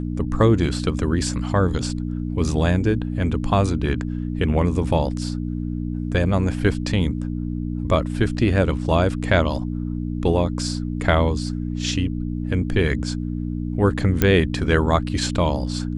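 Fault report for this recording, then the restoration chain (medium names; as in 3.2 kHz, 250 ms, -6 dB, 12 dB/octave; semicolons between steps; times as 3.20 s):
hum 60 Hz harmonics 5 -26 dBFS
14.22 s: pop -3 dBFS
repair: de-click; de-hum 60 Hz, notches 5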